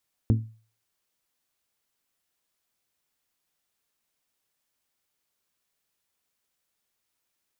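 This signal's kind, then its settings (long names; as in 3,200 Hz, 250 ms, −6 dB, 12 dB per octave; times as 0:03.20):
struck glass bell, lowest mode 111 Hz, decay 0.40 s, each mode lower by 5 dB, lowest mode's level −15 dB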